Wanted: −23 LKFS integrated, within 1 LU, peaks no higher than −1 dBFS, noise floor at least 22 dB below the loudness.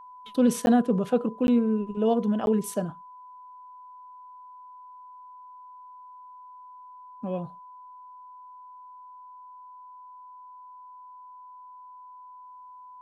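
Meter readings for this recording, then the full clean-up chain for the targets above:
number of dropouts 3; longest dropout 11 ms; interfering tone 1,000 Hz; level of the tone −44 dBFS; integrated loudness −25.5 LKFS; sample peak −11.5 dBFS; target loudness −23.0 LKFS
→ repair the gap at 0:00.66/0:01.47/0:02.46, 11 ms
notch filter 1,000 Hz, Q 30
level +2.5 dB

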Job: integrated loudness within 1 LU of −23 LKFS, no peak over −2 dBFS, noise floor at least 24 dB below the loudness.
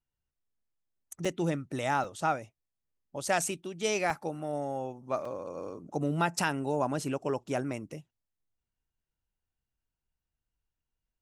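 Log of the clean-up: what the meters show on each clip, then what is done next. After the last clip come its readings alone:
number of dropouts 4; longest dropout 3.8 ms; integrated loudness −32.5 LKFS; sample peak −14.0 dBFS; target loudness −23.0 LKFS
→ repair the gap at 0:01.25/0:02.04/0:04.10/0:05.25, 3.8 ms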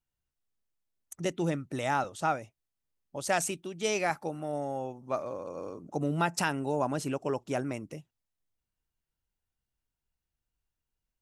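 number of dropouts 0; integrated loudness −32.5 LKFS; sample peak −14.0 dBFS; target loudness −23.0 LKFS
→ level +9.5 dB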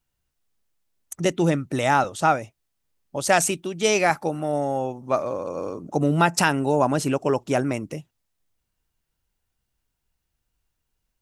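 integrated loudness −23.0 LKFS; sample peak −4.5 dBFS; background noise floor −79 dBFS

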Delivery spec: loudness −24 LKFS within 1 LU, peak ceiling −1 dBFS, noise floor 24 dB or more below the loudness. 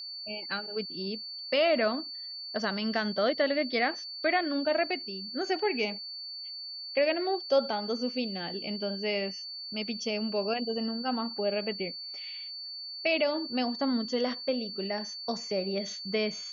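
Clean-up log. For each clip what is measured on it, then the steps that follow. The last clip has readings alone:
interfering tone 4,500 Hz; level of the tone −38 dBFS; integrated loudness −31.0 LKFS; sample peak −14.5 dBFS; target loudness −24.0 LKFS
→ notch filter 4,500 Hz, Q 30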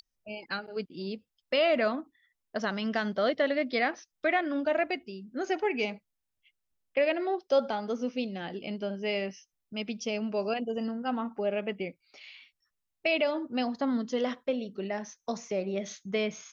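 interfering tone none found; integrated loudness −31.5 LKFS; sample peak −14.5 dBFS; target loudness −24.0 LKFS
→ level +7.5 dB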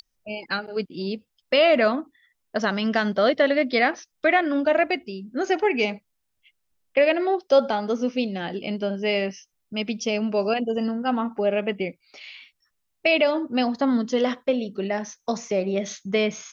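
integrated loudness −24.0 LKFS; sample peak −7.0 dBFS; background noise floor −76 dBFS

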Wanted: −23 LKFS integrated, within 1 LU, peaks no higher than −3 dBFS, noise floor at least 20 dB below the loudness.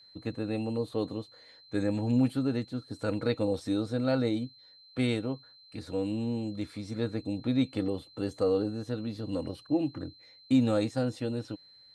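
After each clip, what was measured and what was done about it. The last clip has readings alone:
interfering tone 4,100 Hz; level of the tone −54 dBFS; integrated loudness −31.5 LKFS; sample peak −14.0 dBFS; target loudness −23.0 LKFS
→ notch filter 4,100 Hz, Q 30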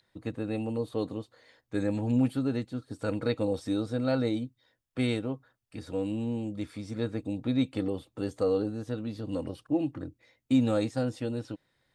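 interfering tone none found; integrated loudness −31.5 LKFS; sample peak −14.0 dBFS; target loudness −23.0 LKFS
→ level +8.5 dB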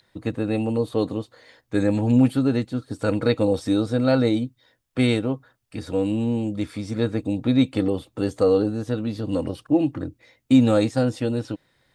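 integrated loudness −23.0 LKFS; sample peak −5.5 dBFS; background noise floor −69 dBFS

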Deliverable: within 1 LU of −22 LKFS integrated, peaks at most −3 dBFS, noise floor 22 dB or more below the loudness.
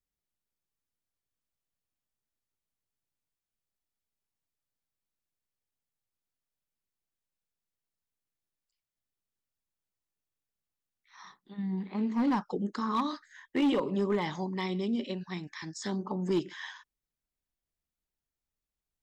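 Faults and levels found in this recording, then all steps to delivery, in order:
share of clipped samples 0.4%; peaks flattened at −22.0 dBFS; integrated loudness −32.0 LKFS; sample peak −22.0 dBFS; target loudness −22.0 LKFS
→ clipped peaks rebuilt −22 dBFS
level +10 dB

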